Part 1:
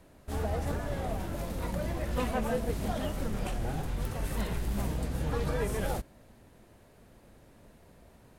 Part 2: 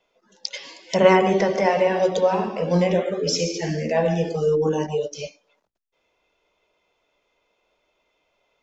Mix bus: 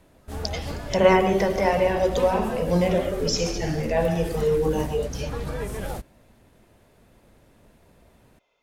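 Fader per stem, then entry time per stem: +0.5 dB, -2.0 dB; 0.00 s, 0.00 s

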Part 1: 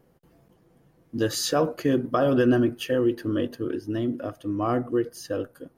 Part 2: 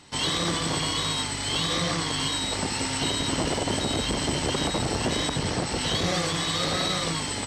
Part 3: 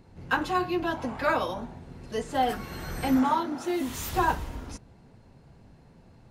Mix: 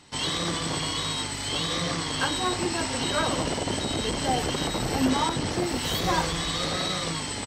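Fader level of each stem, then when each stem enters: -20.0 dB, -2.0 dB, -2.5 dB; 0.00 s, 0.00 s, 1.90 s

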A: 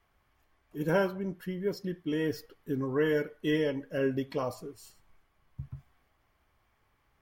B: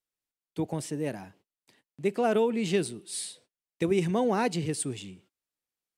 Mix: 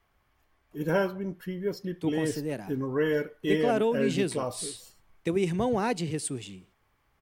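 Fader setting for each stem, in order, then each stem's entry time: +1.0 dB, -1.0 dB; 0.00 s, 1.45 s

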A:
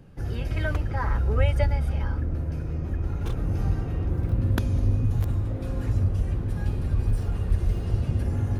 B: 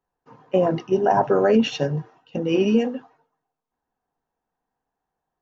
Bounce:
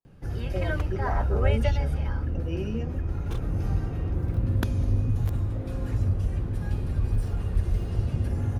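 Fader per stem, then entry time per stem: -1.5 dB, -14.5 dB; 0.05 s, 0.00 s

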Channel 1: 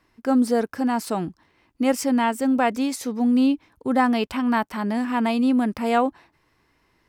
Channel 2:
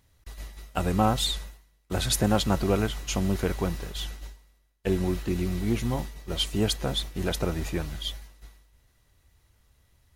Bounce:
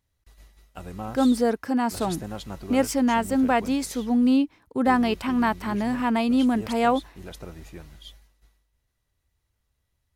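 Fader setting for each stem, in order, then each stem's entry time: -1.0 dB, -12.0 dB; 0.90 s, 0.00 s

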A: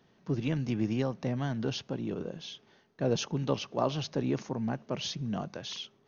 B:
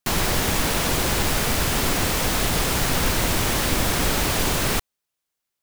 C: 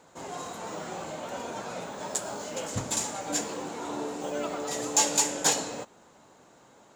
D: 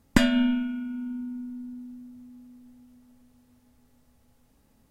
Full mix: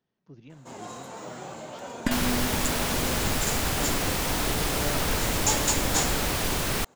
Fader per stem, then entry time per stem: -17.5 dB, -5.0 dB, -2.5 dB, -7.5 dB; 0.00 s, 2.05 s, 0.50 s, 1.90 s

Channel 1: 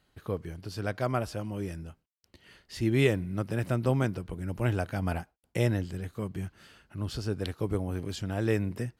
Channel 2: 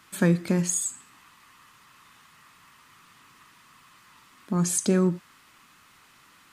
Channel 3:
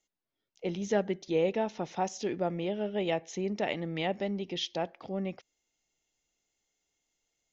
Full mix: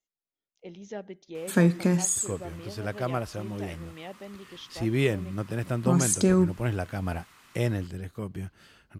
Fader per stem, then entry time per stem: -0.5 dB, +0.5 dB, -10.0 dB; 2.00 s, 1.35 s, 0.00 s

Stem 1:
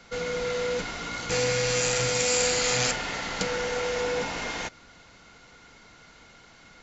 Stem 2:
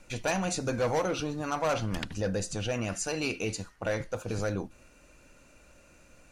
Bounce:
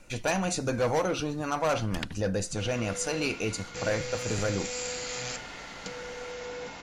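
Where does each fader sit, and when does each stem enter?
-10.5 dB, +1.5 dB; 2.45 s, 0.00 s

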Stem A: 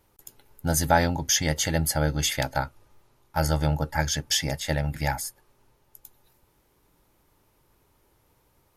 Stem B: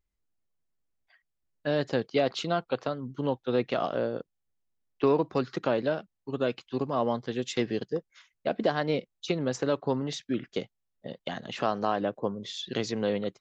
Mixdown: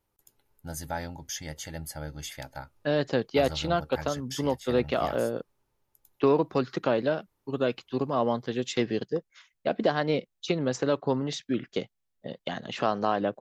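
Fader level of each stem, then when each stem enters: -13.5 dB, +1.5 dB; 0.00 s, 1.20 s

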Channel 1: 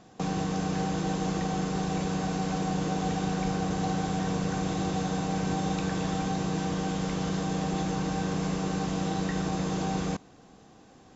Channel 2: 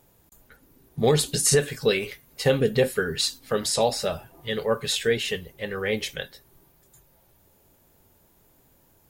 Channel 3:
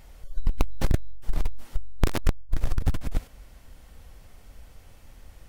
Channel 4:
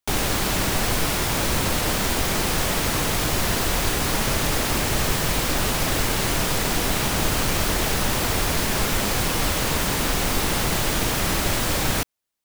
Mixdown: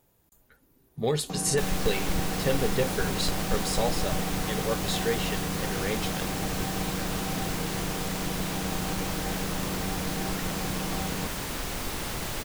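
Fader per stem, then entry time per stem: -4.5 dB, -6.5 dB, -10.0 dB, -10.5 dB; 1.10 s, 0.00 s, 1.25 s, 1.50 s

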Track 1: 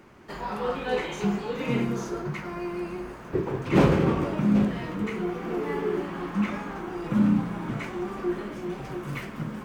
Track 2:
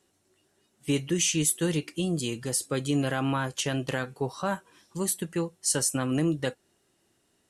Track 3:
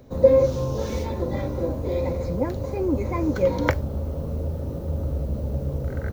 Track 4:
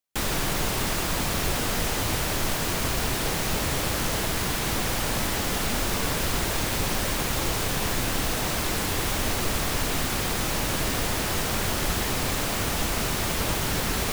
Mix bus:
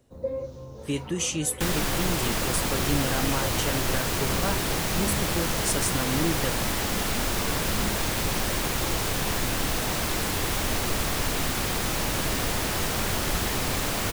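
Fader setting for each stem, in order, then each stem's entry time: -14.5 dB, -2.5 dB, -15.5 dB, -0.5 dB; 0.55 s, 0.00 s, 0.00 s, 1.45 s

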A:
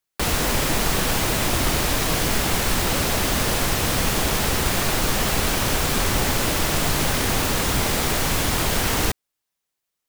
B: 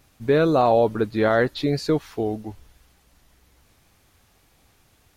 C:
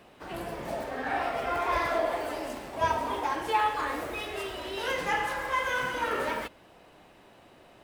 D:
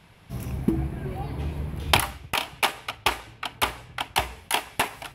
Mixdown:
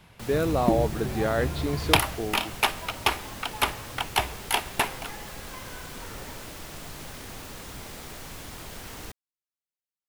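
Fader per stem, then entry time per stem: -19.0 dB, -7.0 dB, -17.0 dB, -0.5 dB; 0.00 s, 0.00 s, 0.00 s, 0.00 s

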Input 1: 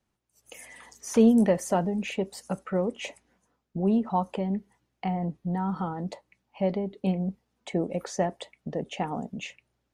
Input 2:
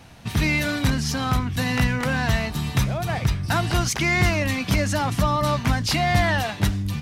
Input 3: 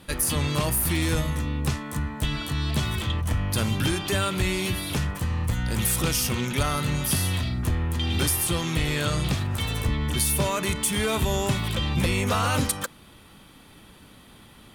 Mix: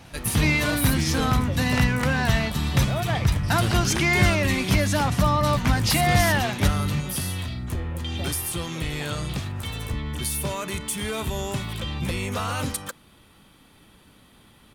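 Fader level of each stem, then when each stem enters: -13.5 dB, 0.0 dB, -4.0 dB; 0.00 s, 0.00 s, 0.05 s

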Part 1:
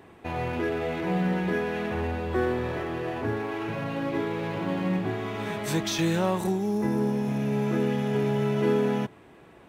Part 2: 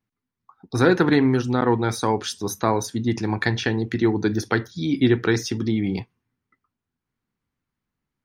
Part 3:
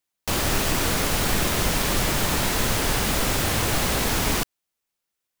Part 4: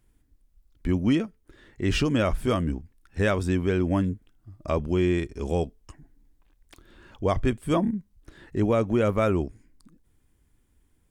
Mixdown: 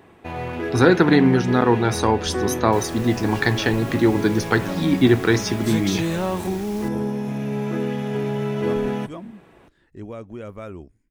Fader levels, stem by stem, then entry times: +1.0 dB, +2.5 dB, -18.0 dB, -12.5 dB; 0.00 s, 0.00 s, 2.45 s, 1.40 s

